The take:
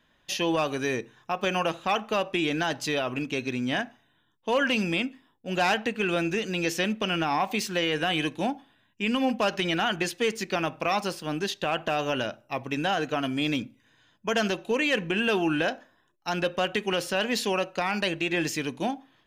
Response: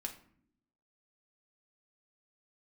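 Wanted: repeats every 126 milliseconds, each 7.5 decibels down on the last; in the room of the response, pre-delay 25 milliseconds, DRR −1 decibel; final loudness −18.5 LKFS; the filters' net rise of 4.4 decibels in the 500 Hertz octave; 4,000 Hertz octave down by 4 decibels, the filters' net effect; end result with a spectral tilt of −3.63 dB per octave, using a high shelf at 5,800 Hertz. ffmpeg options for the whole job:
-filter_complex "[0:a]equalizer=frequency=500:width_type=o:gain=5.5,equalizer=frequency=4000:width_type=o:gain=-8.5,highshelf=frequency=5800:gain=6,aecho=1:1:126|252|378|504|630:0.422|0.177|0.0744|0.0312|0.0131,asplit=2[link_01][link_02];[1:a]atrim=start_sample=2205,adelay=25[link_03];[link_02][link_03]afir=irnorm=-1:irlink=0,volume=2.5dB[link_04];[link_01][link_04]amix=inputs=2:normalize=0,volume=3dB"

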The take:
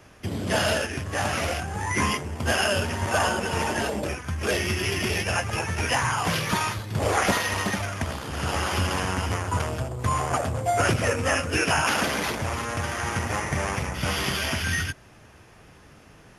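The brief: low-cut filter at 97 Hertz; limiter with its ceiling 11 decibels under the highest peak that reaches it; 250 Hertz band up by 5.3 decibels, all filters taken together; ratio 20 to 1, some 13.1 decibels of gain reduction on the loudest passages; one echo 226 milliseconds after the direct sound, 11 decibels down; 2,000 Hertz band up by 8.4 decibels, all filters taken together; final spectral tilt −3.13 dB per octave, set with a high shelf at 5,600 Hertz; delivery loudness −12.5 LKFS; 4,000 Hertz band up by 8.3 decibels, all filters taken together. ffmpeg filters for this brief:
ffmpeg -i in.wav -af "highpass=97,equalizer=frequency=250:width_type=o:gain=7,equalizer=frequency=2000:width_type=o:gain=8.5,equalizer=frequency=4000:width_type=o:gain=6,highshelf=frequency=5600:gain=5.5,acompressor=threshold=-26dB:ratio=20,alimiter=limit=-23dB:level=0:latency=1,aecho=1:1:226:0.282,volume=19.5dB" out.wav

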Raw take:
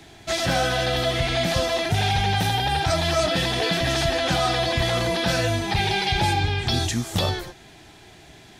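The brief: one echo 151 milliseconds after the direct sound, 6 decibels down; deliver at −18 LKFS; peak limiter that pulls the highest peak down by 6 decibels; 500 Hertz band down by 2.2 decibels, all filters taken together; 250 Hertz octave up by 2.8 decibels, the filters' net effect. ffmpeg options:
ffmpeg -i in.wav -af "equalizer=frequency=250:width_type=o:gain=5.5,equalizer=frequency=500:width_type=o:gain=-4.5,alimiter=limit=-15dB:level=0:latency=1,aecho=1:1:151:0.501,volume=5dB" out.wav

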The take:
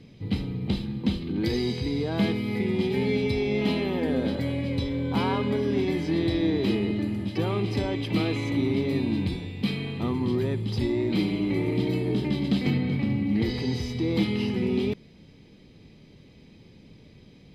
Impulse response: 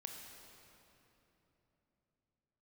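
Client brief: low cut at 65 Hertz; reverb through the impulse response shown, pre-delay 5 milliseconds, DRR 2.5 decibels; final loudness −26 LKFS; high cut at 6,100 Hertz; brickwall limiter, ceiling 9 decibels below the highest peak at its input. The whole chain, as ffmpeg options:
-filter_complex "[0:a]highpass=65,lowpass=6100,alimiter=limit=-22dB:level=0:latency=1,asplit=2[link_01][link_02];[1:a]atrim=start_sample=2205,adelay=5[link_03];[link_02][link_03]afir=irnorm=-1:irlink=0,volume=1dB[link_04];[link_01][link_04]amix=inputs=2:normalize=0,volume=2dB"

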